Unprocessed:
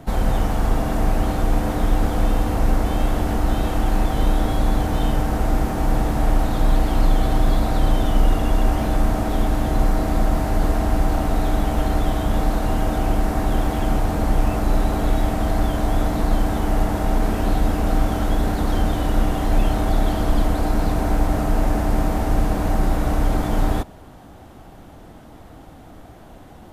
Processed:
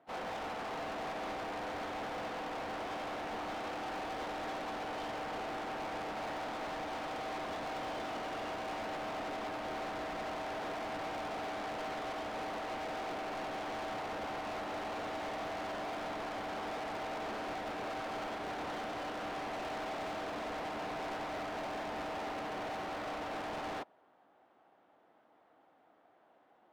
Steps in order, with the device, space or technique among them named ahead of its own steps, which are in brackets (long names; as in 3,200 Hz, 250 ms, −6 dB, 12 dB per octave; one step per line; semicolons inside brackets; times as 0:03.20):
walkie-talkie (band-pass filter 490–2,500 Hz; hard clipping −34.5 dBFS, distortion −6 dB; noise gate −36 dBFS, range −23 dB)
level +5 dB